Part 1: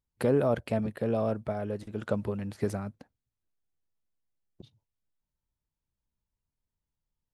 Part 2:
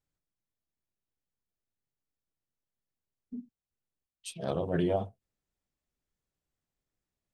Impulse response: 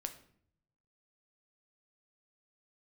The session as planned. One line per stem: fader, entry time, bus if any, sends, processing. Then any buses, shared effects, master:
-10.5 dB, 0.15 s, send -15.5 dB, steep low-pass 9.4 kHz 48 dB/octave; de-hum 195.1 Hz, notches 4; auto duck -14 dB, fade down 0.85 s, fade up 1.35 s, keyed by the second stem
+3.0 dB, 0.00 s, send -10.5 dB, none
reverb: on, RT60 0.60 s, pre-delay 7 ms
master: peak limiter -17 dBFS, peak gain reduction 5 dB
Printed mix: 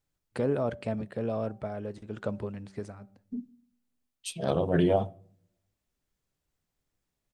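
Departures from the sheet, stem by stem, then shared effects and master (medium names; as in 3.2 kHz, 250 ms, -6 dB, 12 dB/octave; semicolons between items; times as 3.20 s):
stem 1 -10.5 dB -> -4.0 dB; master: missing peak limiter -17 dBFS, peak gain reduction 5 dB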